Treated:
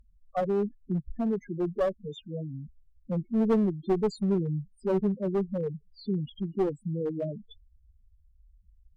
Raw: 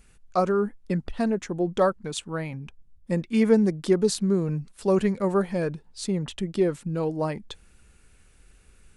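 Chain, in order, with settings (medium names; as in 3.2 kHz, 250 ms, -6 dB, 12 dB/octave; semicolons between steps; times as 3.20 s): loudest bins only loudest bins 4; one-sided clip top -23.5 dBFS; trim -2 dB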